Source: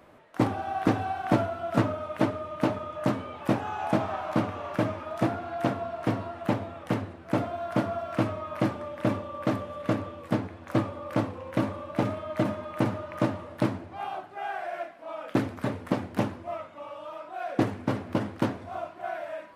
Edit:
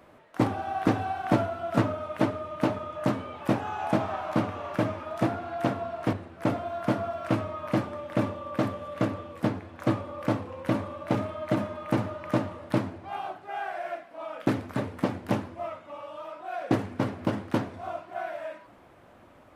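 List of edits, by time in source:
0:06.13–0:07.01: remove

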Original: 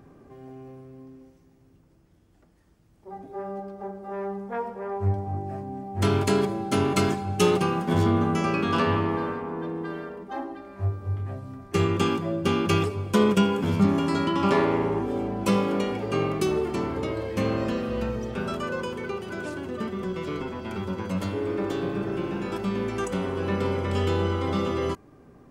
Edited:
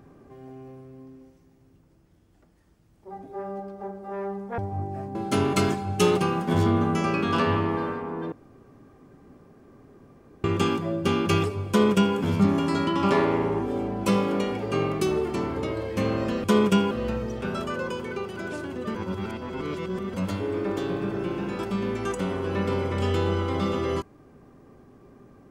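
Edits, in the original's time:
0:04.58–0:05.13: remove
0:05.70–0:06.55: remove
0:09.72–0:11.84: fill with room tone
0:13.09–0:13.56: duplicate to 0:17.84
0:19.88–0:21.07: reverse

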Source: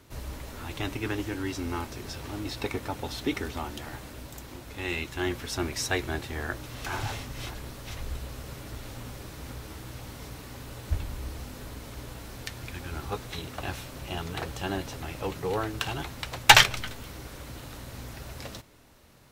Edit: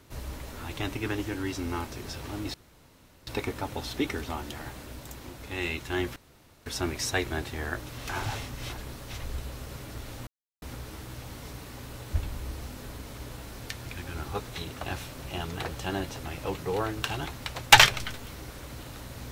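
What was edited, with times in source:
0:02.54: splice in room tone 0.73 s
0:05.43: splice in room tone 0.50 s
0:09.04–0:09.39: silence

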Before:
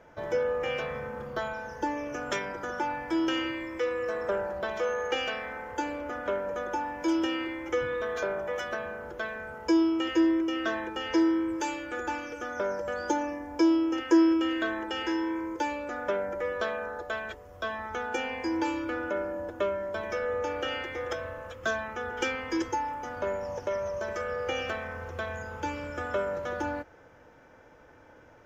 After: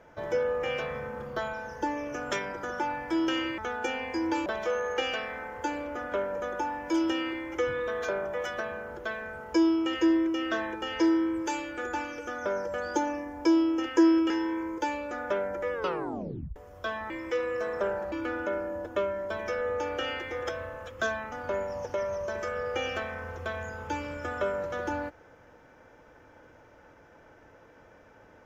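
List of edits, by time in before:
0:03.58–0:04.60: swap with 0:17.88–0:18.76
0:14.44–0:15.08: remove
0:16.51: tape stop 0.83 s
0:21.96–0:23.05: remove

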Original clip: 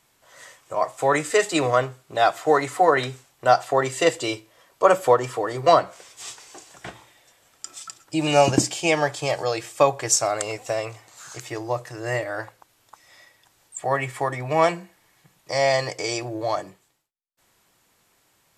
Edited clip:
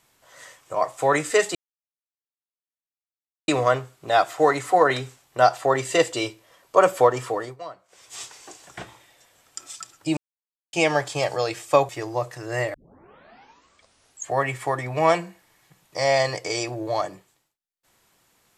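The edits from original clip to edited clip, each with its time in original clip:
0:01.55: splice in silence 1.93 s
0:05.33–0:06.26: duck −21.5 dB, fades 0.31 s equal-power
0:08.24–0:08.80: silence
0:09.96–0:11.43: remove
0:12.28: tape start 1.63 s

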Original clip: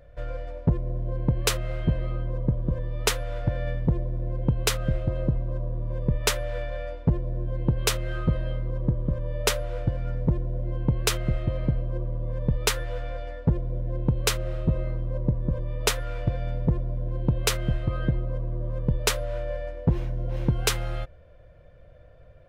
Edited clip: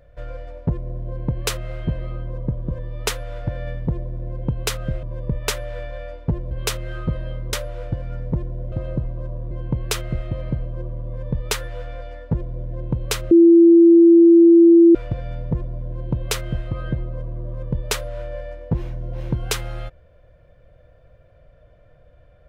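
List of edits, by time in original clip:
0:05.03–0:05.82: move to 0:10.67
0:07.30–0:07.71: remove
0:08.73–0:09.48: remove
0:14.47–0:16.11: beep over 337 Hz −6.5 dBFS

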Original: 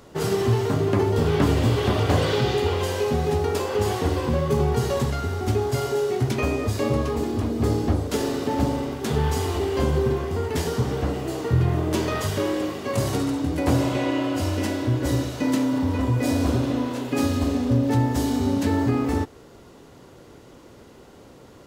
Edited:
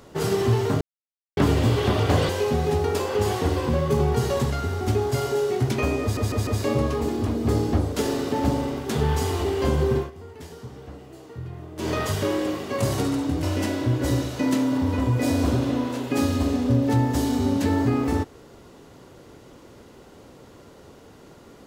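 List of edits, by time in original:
0:00.81–0:01.37: silence
0:02.29–0:02.89: remove
0:06.62: stutter 0.15 s, 4 plays
0:10.13–0:12.05: duck −15.5 dB, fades 0.13 s
0:13.58–0:14.44: remove

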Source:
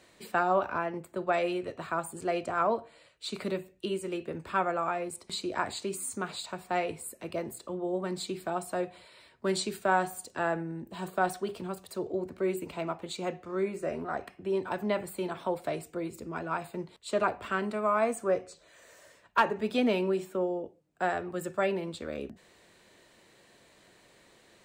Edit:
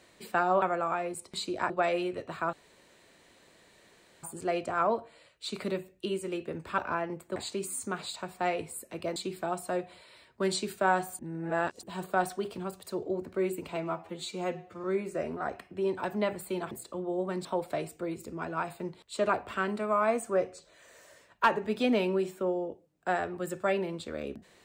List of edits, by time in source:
0:00.62–0:01.20: swap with 0:04.58–0:05.66
0:02.03: splice in room tone 1.70 s
0:07.46–0:08.20: move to 0:15.39
0:10.23–0:10.87: reverse
0:12.80–0:13.52: time-stretch 1.5×

